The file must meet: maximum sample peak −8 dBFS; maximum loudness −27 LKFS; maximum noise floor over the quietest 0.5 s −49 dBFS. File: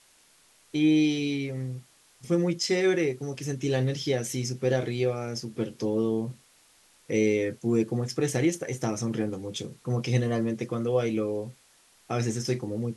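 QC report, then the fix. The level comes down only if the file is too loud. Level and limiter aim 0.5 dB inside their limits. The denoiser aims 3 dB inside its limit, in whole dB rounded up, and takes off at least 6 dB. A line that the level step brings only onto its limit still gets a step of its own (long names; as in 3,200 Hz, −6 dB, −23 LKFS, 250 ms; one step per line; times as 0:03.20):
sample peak −11.5 dBFS: in spec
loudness −28.0 LKFS: in spec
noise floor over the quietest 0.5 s −61 dBFS: in spec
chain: no processing needed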